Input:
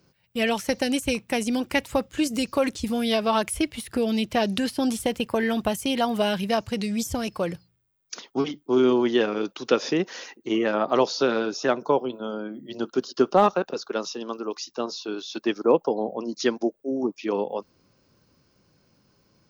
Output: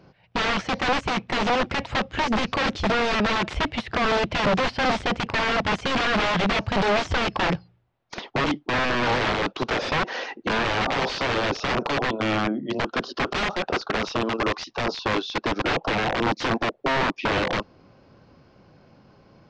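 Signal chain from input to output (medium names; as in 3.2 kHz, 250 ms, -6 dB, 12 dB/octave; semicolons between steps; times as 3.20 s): peaking EQ 730 Hz +6.5 dB 0.58 oct; in parallel at +3 dB: compressor with a negative ratio -26 dBFS, ratio -1; on the sum: integer overflow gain 15.5 dB; Gaussian low-pass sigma 2.2 samples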